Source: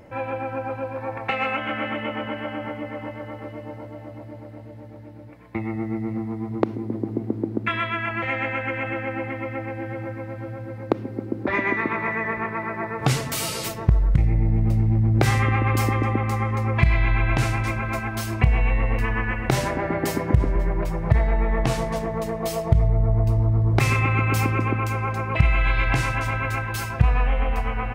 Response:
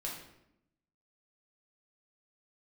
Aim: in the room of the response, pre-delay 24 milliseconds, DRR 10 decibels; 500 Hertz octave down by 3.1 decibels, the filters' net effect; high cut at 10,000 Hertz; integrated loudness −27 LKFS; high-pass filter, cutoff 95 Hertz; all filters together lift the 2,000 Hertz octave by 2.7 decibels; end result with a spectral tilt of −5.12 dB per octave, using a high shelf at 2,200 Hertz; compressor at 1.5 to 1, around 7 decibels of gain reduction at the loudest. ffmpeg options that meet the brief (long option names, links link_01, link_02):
-filter_complex "[0:a]highpass=95,lowpass=10000,equalizer=frequency=500:width_type=o:gain=-4,equalizer=frequency=2000:width_type=o:gain=6,highshelf=frequency=2200:gain=-5,acompressor=threshold=-35dB:ratio=1.5,asplit=2[link_01][link_02];[1:a]atrim=start_sample=2205,adelay=24[link_03];[link_02][link_03]afir=irnorm=-1:irlink=0,volume=-11dB[link_04];[link_01][link_04]amix=inputs=2:normalize=0,volume=3.5dB"